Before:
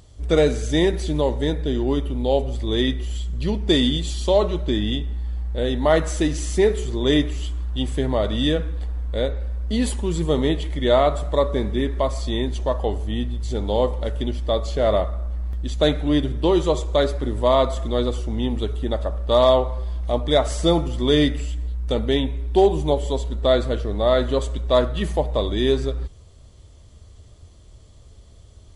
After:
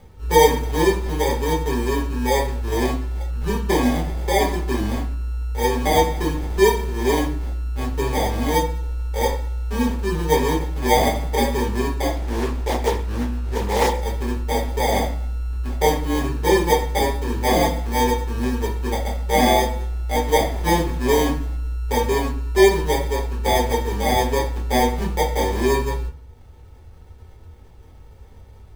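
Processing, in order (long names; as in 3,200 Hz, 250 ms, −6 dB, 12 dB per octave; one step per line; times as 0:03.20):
upward compression, threshold −37 dBFS
hollow resonant body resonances 480/1,100/3,300 Hz, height 11 dB
decimation without filtering 32×
convolution reverb RT60 0.40 s, pre-delay 5 ms, DRR −5 dB
0:12.15–0:14.02: highs frequency-modulated by the lows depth 0.31 ms
level −11.5 dB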